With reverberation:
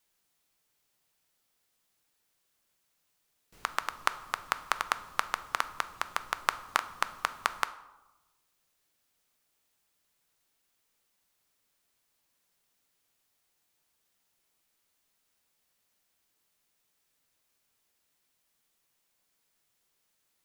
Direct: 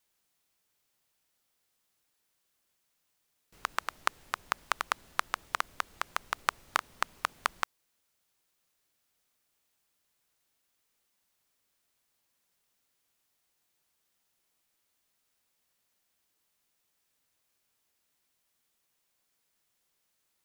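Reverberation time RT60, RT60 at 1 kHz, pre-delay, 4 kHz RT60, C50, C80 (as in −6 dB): 1.0 s, 1.1 s, 4 ms, 0.60 s, 15.5 dB, 18.0 dB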